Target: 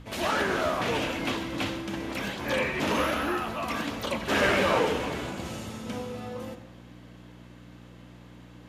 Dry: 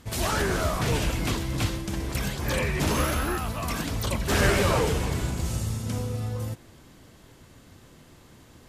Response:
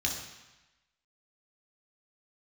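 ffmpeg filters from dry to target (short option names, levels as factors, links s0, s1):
-filter_complex "[0:a]acrossover=split=230 3100:gain=0.0708 1 0.2[s0][s1][s2];[s0][s1][s2]amix=inputs=3:normalize=0,aeval=exprs='val(0)+0.00501*(sin(2*PI*60*n/s)+sin(2*PI*2*60*n/s)/2+sin(2*PI*3*60*n/s)/3+sin(2*PI*4*60*n/s)/4+sin(2*PI*5*60*n/s)/5)':c=same,asplit=2[s3][s4];[1:a]atrim=start_sample=2205[s5];[s4][s5]afir=irnorm=-1:irlink=0,volume=0.266[s6];[s3][s6]amix=inputs=2:normalize=0,volume=1.19"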